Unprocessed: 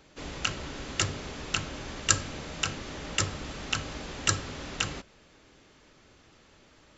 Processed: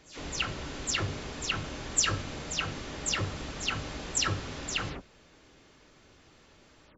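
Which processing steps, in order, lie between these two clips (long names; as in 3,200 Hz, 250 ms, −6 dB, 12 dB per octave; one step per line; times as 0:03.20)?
every frequency bin delayed by itself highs early, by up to 130 ms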